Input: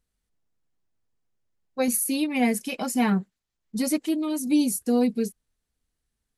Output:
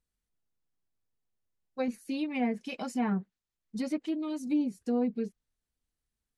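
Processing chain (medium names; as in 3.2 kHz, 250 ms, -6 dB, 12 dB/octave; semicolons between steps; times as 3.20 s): low-pass that closes with the level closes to 1.7 kHz, closed at -18.5 dBFS; trim -7 dB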